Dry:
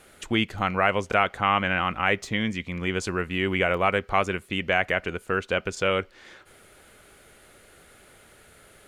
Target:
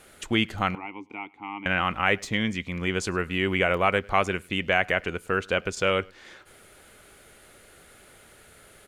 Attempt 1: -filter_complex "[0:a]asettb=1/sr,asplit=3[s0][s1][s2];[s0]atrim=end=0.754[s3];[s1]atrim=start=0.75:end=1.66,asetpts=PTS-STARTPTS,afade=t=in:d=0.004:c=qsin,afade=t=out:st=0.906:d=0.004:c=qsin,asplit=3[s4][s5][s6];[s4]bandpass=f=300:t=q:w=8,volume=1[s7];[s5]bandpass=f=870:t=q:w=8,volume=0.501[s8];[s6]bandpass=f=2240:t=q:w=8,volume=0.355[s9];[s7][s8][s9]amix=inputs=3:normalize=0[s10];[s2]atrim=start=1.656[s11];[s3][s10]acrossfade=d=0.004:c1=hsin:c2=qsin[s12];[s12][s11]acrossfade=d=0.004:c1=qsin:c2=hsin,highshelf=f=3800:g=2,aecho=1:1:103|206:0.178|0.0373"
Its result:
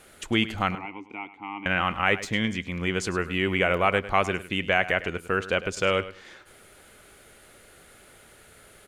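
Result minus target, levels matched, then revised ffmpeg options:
echo-to-direct +11.5 dB
-filter_complex "[0:a]asettb=1/sr,asplit=3[s0][s1][s2];[s0]atrim=end=0.754[s3];[s1]atrim=start=0.75:end=1.66,asetpts=PTS-STARTPTS,afade=t=in:d=0.004:c=qsin,afade=t=out:st=0.906:d=0.004:c=qsin,asplit=3[s4][s5][s6];[s4]bandpass=f=300:t=q:w=8,volume=1[s7];[s5]bandpass=f=870:t=q:w=8,volume=0.501[s8];[s6]bandpass=f=2240:t=q:w=8,volume=0.355[s9];[s7][s8][s9]amix=inputs=3:normalize=0[s10];[s2]atrim=start=1.656[s11];[s3][s10]acrossfade=d=0.004:c1=hsin:c2=qsin[s12];[s12][s11]acrossfade=d=0.004:c1=qsin:c2=hsin,highshelf=f=3800:g=2,aecho=1:1:103:0.0473"

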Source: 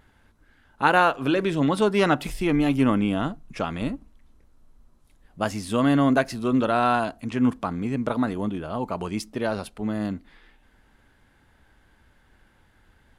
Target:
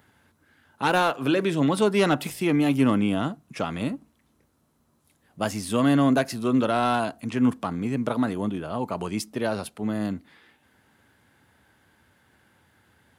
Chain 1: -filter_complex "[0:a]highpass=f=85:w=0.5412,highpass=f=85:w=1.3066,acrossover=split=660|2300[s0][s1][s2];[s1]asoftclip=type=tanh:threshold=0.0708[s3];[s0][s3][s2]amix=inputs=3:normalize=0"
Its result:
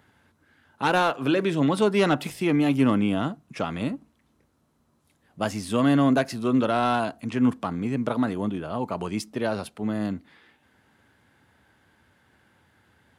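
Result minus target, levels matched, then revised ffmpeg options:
8 kHz band -3.5 dB
-filter_complex "[0:a]highpass=f=85:w=0.5412,highpass=f=85:w=1.3066,highshelf=f=9300:g=8.5,acrossover=split=660|2300[s0][s1][s2];[s1]asoftclip=type=tanh:threshold=0.0708[s3];[s0][s3][s2]amix=inputs=3:normalize=0"

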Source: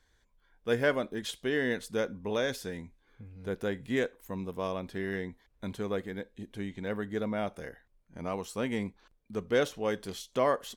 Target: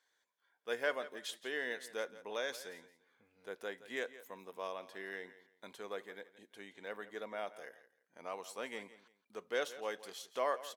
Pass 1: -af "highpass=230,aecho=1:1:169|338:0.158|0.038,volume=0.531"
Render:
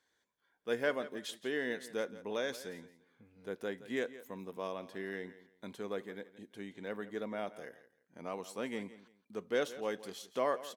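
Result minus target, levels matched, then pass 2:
250 Hz band +8.0 dB
-af "highpass=550,aecho=1:1:169|338:0.158|0.038,volume=0.531"

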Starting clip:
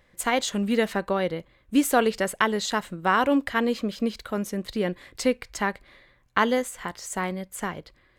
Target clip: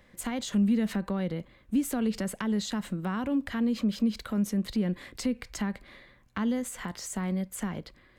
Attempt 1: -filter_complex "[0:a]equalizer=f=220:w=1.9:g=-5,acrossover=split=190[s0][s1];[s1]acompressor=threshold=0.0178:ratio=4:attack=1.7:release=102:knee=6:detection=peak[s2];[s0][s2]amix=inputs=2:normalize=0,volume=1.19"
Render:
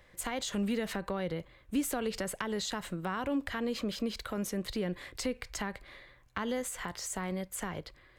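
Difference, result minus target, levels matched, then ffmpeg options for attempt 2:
250 Hz band -3.0 dB
-filter_complex "[0:a]equalizer=f=220:w=1.9:g=6.5,acrossover=split=190[s0][s1];[s1]acompressor=threshold=0.0178:ratio=4:attack=1.7:release=102:knee=6:detection=peak[s2];[s0][s2]amix=inputs=2:normalize=0,volume=1.19"

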